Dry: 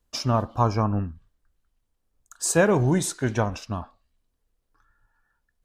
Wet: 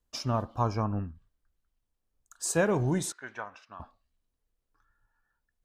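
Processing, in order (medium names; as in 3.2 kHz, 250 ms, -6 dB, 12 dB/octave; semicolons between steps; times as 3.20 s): 3.12–3.80 s: band-pass filter 1.5 kHz, Q 1.4; trim -6.5 dB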